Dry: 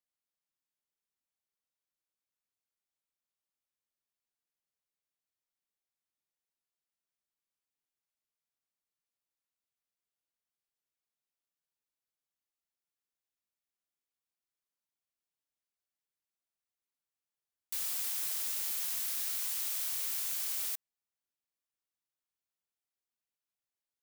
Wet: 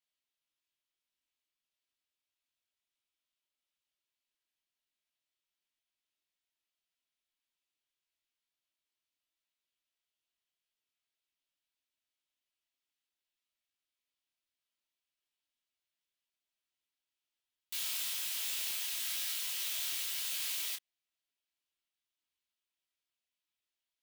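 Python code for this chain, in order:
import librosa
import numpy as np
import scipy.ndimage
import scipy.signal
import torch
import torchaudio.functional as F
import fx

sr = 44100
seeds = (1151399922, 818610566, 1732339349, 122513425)

y = fx.peak_eq(x, sr, hz=3100.0, db=11.0, octaves=1.3)
y = y + 0.47 * np.pad(y, (int(3.1 * sr / 1000.0), 0))[:len(y)]
y = fx.detune_double(y, sr, cents=55)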